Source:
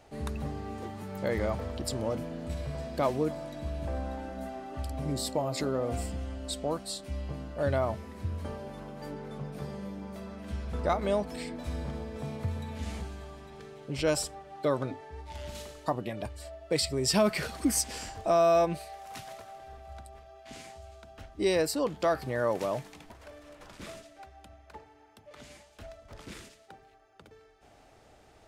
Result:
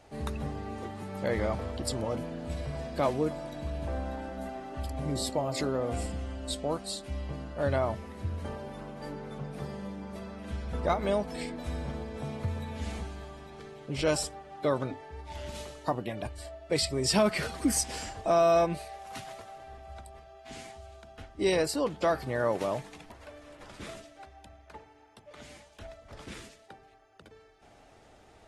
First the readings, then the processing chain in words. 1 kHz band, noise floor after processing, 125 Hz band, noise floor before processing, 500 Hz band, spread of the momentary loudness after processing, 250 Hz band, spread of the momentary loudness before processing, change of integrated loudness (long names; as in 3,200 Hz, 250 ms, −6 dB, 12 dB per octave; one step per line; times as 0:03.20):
+0.5 dB, −57 dBFS, 0.0 dB, −58 dBFS, 0.0 dB, 20 LU, 0.0 dB, 21 LU, 0.0 dB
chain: AAC 32 kbit/s 48,000 Hz